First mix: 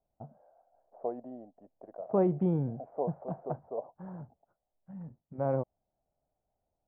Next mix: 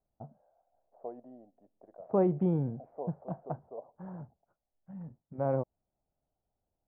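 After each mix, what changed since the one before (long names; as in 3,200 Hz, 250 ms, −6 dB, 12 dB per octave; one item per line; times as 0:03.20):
second voice −8.5 dB
reverb: on, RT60 0.50 s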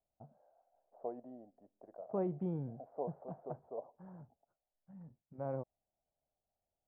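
first voice −9.5 dB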